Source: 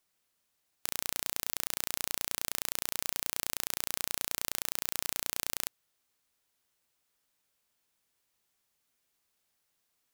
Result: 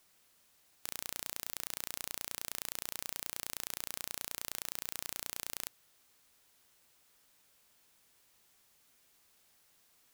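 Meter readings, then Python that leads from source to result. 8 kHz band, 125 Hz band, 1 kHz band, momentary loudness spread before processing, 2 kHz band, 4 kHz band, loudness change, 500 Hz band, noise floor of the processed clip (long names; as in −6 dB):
−6.0 dB, −6.0 dB, −6.0 dB, 2 LU, −6.0 dB, −6.0 dB, −6.0 dB, −6.0 dB, −69 dBFS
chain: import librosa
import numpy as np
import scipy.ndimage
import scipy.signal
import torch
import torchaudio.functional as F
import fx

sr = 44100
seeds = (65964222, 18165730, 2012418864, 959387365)

y = 10.0 ** (-12.0 / 20.0) * (np.abs((x / 10.0 ** (-12.0 / 20.0) + 3.0) % 4.0 - 2.0) - 1.0)
y = y * 10.0 ** (10.0 / 20.0)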